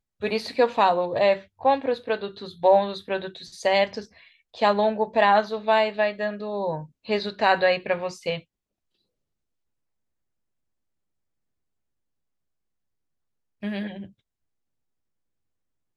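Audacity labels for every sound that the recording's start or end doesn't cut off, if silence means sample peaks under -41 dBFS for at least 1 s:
13.630000	14.070000	sound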